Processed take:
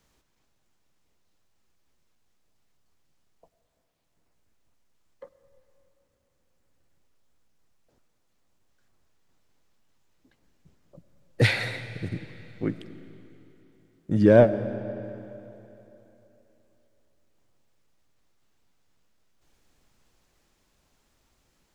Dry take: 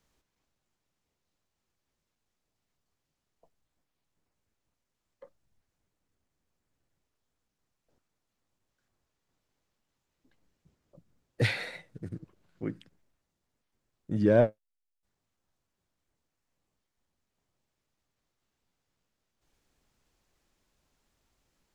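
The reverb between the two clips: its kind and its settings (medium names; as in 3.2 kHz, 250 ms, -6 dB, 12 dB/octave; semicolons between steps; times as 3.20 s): algorithmic reverb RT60 3.3 s, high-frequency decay 0.9×, pre-delay 60 ms, DRR 12.5 dB; trim +6.5 dB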